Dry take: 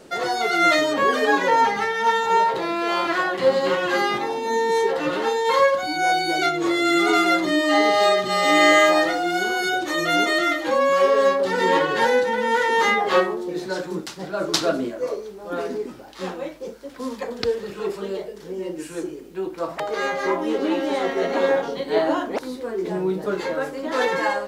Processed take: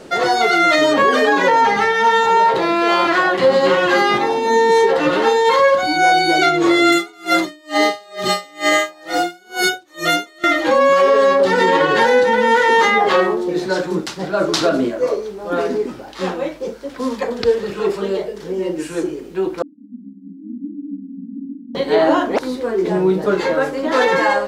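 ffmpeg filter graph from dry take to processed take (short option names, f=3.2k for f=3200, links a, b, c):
-filter_complex "[0:a]asettb=1/sr,asplit=3[a][b][c];[a]atrim=end=6.924[d];[b]atrim=start=6.92:end=10.44,asetpts=PTS-STARTPTS,afade=t=in:d=0.004:c=qsin,afade=t=out:st=3.516:d=0.004:c=qsin,aemphasis=mode=production:type=50kf,aeval=exprs='val(0)*pow(10,-36*(0.5-0.5*cos(2*PI*2.2*n/s))/20)':c=same[e];[c]atrim=start=10.436[f];[d][e]acrossfade=d=0.004:c1=hsin:c2=qsin[g];[g][f]acrossfade=d=0.004:c1=qsin:c2=hsin,asettb=1/sr,asplit=3[h][i][j];[h]atrim=end=19.624[k];[i]atrim=start=19.62:end=21.75,asetpts=PTS-STARTPTS,afade=t=in:d=0.004:c=qsin,afade=t=out:st=2.126:d=0.004:c=qsin,tremolo=f=200:d=0.947,asuperpass=centerf=240:order=12:qfactor=2.4[l];[j]atrim=start=21.746[m];[k][l]acrossfade=d=0.004:c1=hsin:c2=qsin[n];[n][m]acrossfade=d=0.004:c1=qsin:c2=hsin,highshelf=f=9.4k:g=-8.5,alimiter=level_in=12dB:limit=-1dB:release=50:level=0:latency=1,volume=-4dB"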